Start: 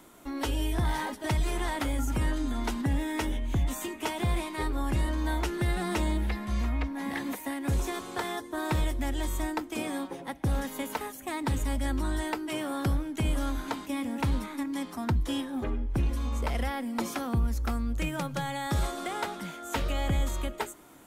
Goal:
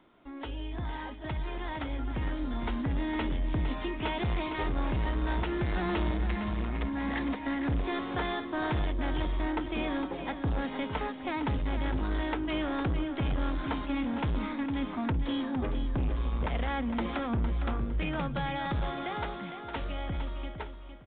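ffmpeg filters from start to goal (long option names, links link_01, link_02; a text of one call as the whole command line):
ffmpeg -i in.wav -filter_complex "[0:a]dynaudnorm=framelen=460:gausssize=11:maxgain=11dB,asoftclip=type=tanh:threshold=-19dB,asplit=2[link_01][link_02];[link_02]aecho=0:1:458|916|1374:0.355|0.106|0.0319[link_03];[link_01][link_03]amix=inputs=2:normalize=0,aresample=8000,aresample=44100,volume=-7.5dB" out.wav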